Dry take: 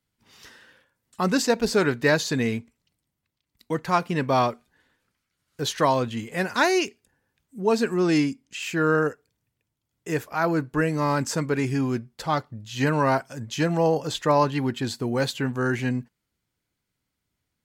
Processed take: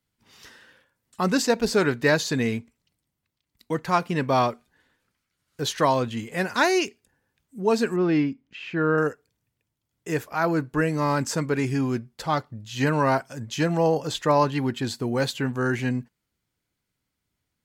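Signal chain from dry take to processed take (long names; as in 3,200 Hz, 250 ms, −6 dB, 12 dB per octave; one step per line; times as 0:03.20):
0:07.96–0:08.98: high-frequency loss of the air 310 metres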